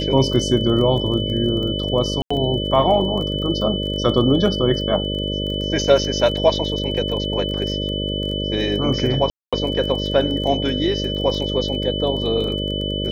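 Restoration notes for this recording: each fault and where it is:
buzz 50 Hz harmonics 12 -25 dBFS
crackle 18 per s -27 dBFS
whine 3 kHz -26 dBFS
2.22–2.31 s: dropout 85 ms
9.30–9.53 s: dropout 226 ms

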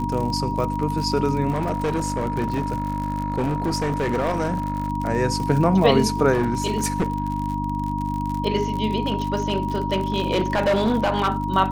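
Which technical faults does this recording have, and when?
crackle 57 per s -27 dBFS
hum 50 Hz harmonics 6 -27 dBFS
whine 950 Hz -27 dBFS
1.50–4.90 s: clipped -18.5 dBFS
6.32–7.56 s: clipped -16.5 dBFS
9.06–11.29 s: clipped -15.5 dBFS

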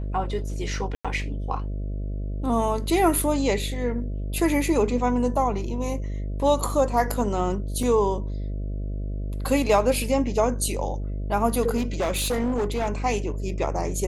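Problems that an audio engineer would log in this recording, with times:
buzz 50 Hz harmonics 13 -29 dBFS
0.95–1.05 s: dropout 96 ms
7.83 s: dropout 2.6 ms
11.76–12.90 s: clipped -20.5 dBFS

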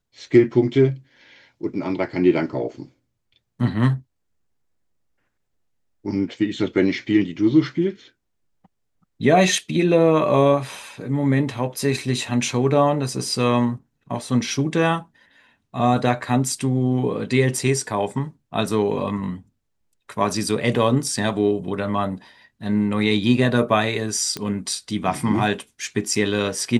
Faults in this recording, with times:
24.37 s: pop -12 dBFS

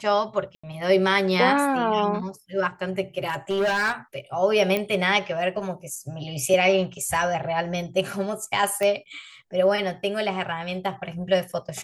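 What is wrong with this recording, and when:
0.55–0.64 s: dropout 85 ms
3.26–3.93 s: clipped -19.5 dBFS
4.77 s: pop -11 dBFS
8.83 s: pop -13 dBFS

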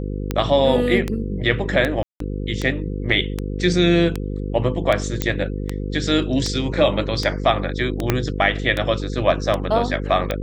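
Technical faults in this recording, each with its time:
buzz 50 Hz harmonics 10 -26 dBFS
tick 78 rpm -9 dBFS
2.03–2.20 s: dropout 173 ms
3.12 s: dropout 3.1 ms
5.22 s: pop -5 dBFS
8.10 s: pop -3 dBFS

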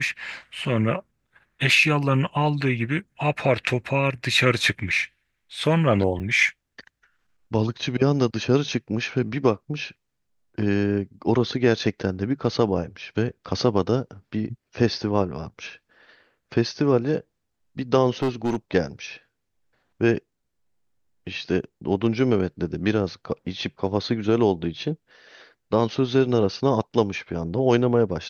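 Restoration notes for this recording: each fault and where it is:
6.19–6.20 s: dropout 8.9 ms
18.22–18.57 s: clipped -19 dBFS

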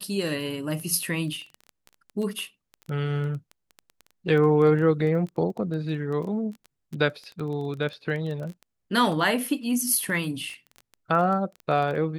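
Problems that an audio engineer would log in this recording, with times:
crackle 13 per s -31 dBFS

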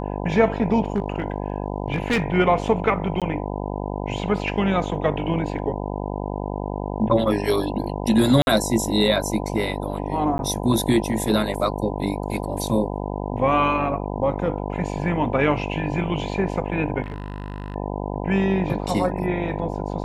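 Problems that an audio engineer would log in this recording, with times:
buzz 50 Hz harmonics 20 -28 dBFS
0.92–2.24 s: clipped -16 dBFS
3.20–3.22 s: dropout 17 ms
8.42–8.47 s: dropout 51 ms
10.38–10.39 s: dropout 11 ms
17.02–17.76 s: clipped -26 dBFS

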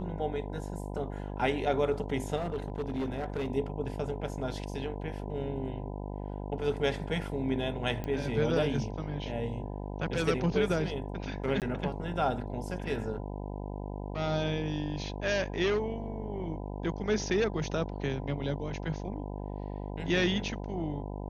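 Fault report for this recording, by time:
buzz 50 Hz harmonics 20 -38 dBFS
2.36–3.50 s: clipped -28.5 dBFS
8.04 s: pop -23 dBFS
11.60–11.62 s: dropout 18 ms

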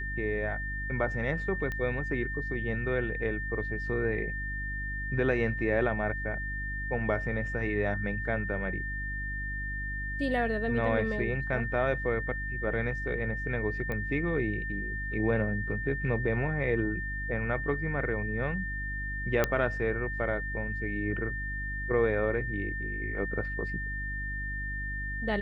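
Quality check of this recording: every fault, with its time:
hum 50 Hz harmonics 6 -37 dBFS
whine 1.8 kHz -35 dBFS
1.72 s: pop -22 dBFS
13.92 s: pop -22 dBFS
19.44 s: pop -11 dBFS

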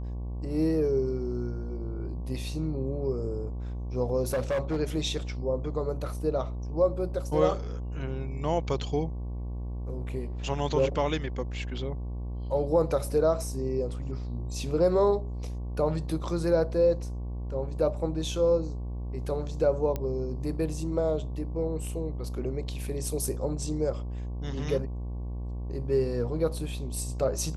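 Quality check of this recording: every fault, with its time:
buzz 60 Hz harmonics 19 -34 dBFS
4.28–4.81 s: clipped -24 dBFS
19.96 s: pop -18 dBFS

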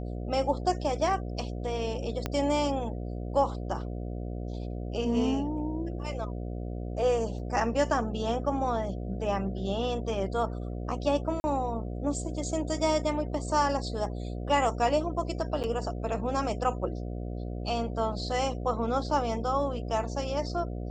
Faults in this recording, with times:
buzz 60 Hz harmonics 12 -35 dBFS
2.26 s: pop -15 dBFS
7.39 s: dropout 4.6 ms
11.40–11.44 s: dropout 40 ms
15.63–15.64 s: dropout 8.4 ms

